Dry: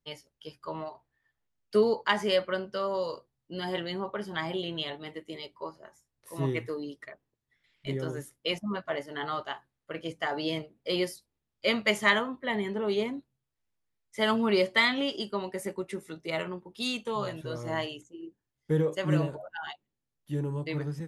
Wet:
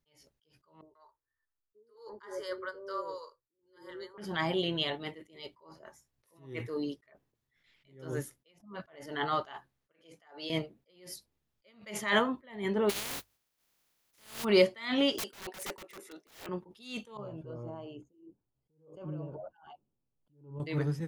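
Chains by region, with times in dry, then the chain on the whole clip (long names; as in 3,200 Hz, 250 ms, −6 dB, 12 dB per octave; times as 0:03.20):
0:00.81–0:04.18: phaser with its sweep stopped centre 710 Hz, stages 6 + multiband delay without the direct sound lows, highs 140 ms, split 520 Hz + expander for the loud parts, over −45 dBFS
0:09.92–0:10.50: high-pass filter 540 Hz 6 dB per octave + compressor whose output falls as the input rises −38 dBFS + multiband upward and downward expander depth 70%
0:12.89–0:14.43: compressing power law on the bin magnitudes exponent 0.16 + mains-hum notches 50/100 Hz + downward compressor, threshold −36 dBFS
0:15.18–0:16.49: high-pass filter 310 Hz 24 dB per octave + wrap-around overflow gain 33 dB
0:17.17–0:20.60: downward compressor 5 to 1, threshold −40 dBFS + moving average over 23 samples
whole clip: parametric band 8,400 Hz −3.5 dB 0.35 octaves; level that may rise only so fast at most 120 dB per second; level +3 dB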